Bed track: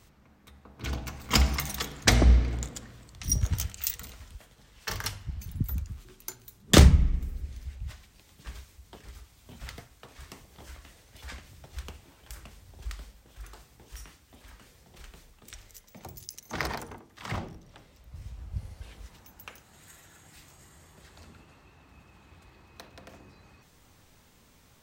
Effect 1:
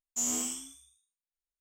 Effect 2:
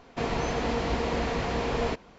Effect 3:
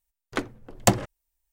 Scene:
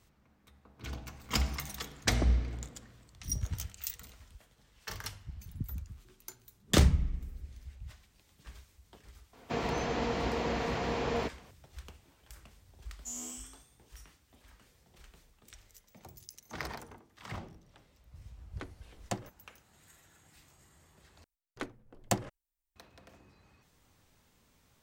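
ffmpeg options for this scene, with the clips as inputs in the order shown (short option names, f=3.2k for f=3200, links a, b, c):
-filter_complex "[3:a]asplit=2[a][b];[0:a]volume=-8dB[c];[2:a]highpass=59[d];[a]equalizer=f=14k:t=o:w=0.75:g=-11.5[e];[c]asplit=2[f][g];[f]atrim=end=21.244[h];[b]atrim=end=1.52,asetpts=PTS-STARTPTS,volume=-11.5dB[i];[g]atrim=start=22.756[j];[d]atrim=end=2.18,asetpts=PTS-STARTPTS,volume=-4dB,afade=t=in:d=0.004:c=hsin,afade=t=out:st=2.176:d=0.004:c=hsin,adelay=9330[k];[1:a]atrim=end=1.6,asetpts=PTS-STARTPTS,volume=-10.5dB,afade=t=in:d=0.004:c=hsin,afade=t=out:st=1.596:d=0.004:c=hsin,adelay=12890[l];[e]atrim=end=1.52,asetpts=PTS-STARTPTS,volume=-17dB,afade=t=in:d=0.004:c=hsin,afade=t=out:st=1.516:d=0.004:c=hsin,adelay=18240[m];[h][i]acrossfade=d=0.004:c1=hsin:c2=hsin[n];[n][j]acrossfade=d=0.004:c1=hsin:c2=hsin[o];[o][k][l][m]amix=inputs=4:normalize=0"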